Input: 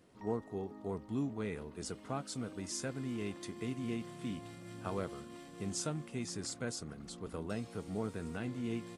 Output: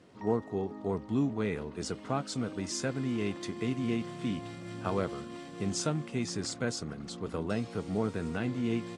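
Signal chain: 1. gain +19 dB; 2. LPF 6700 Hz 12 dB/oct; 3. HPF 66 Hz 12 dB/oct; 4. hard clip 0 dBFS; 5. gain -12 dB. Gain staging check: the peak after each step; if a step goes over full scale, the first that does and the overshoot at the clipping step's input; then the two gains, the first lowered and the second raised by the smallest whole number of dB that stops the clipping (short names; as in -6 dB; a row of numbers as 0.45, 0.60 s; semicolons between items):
-4.0, -4.0, -4.0, -4.0, -16.0 dBFS; no overload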